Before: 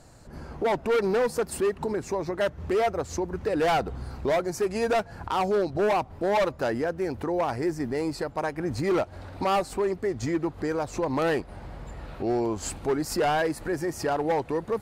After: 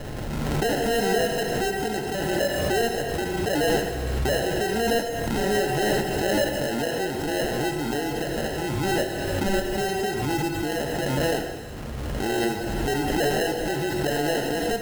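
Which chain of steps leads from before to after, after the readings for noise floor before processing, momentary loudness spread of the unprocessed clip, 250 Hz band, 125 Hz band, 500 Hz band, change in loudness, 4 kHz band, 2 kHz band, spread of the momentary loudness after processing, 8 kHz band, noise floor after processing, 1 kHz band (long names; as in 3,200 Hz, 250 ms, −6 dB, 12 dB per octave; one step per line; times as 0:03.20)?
−46 dBFS, 6 LU, +3.0 dB, +6.0 dB, +1.0 dB, +2.0 dB, +9.5 dB, +6.0 dB, 5 LU, +7.0 dB, −31 dBFS, 0.0 dB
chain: decimation without filtering 38×
reverb whose tail is shaped and stops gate 470 ms falling, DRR 3 dB
background raised ahead of every attack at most 20 dB per second
level −1.5 dB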